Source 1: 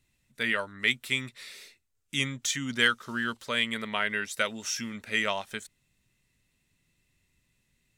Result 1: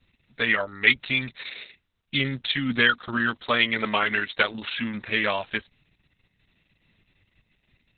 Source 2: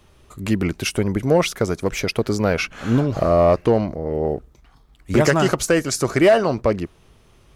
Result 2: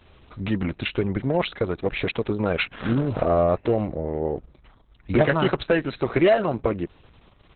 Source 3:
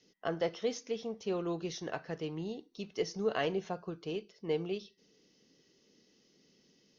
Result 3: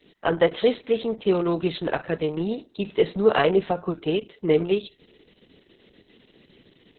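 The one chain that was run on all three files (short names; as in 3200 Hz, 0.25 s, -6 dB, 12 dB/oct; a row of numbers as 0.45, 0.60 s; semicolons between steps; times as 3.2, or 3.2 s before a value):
in parallel at -1 dB: compressor 10:1, threshold -26 dBFS; on the sum: Opus 6 kbps 48000 Hz; match loudness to -24 LUFS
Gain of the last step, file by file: +3.0, -5.0, +9.0 dB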